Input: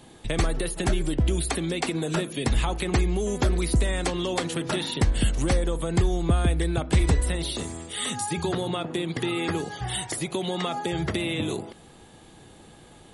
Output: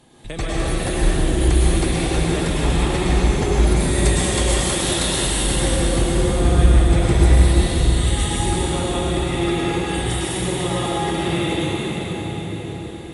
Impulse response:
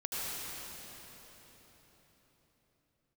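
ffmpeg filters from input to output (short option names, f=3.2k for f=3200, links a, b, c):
-filter_complex "[0:a]asettb=1/sr,asplit=3[a][b][c];[a]atrim=end=3.764[d];[b]atrim=start=3.76:end=5.26,asetpts=PTS-STARTPTS,afade=t=in:d=0.004:c=qsin,afade=t=out:st=1.496:d=0.004:c=qsin,aemphasis=mode=production:type=bsi[e];[c]atrim=start=5.256[f];[d][e]acrossfade=d=0.004:c1=hsin:c2=qsin[g];[g][f]acrossfade=d=0.004:c1=qsin:c2=hsin[h];[1:a]atrim=start_sample=2205,asetrate=32193,aresample=44100[i];[h][i]afir=irnorm=-1:irlink=0,volume=-1.5dB"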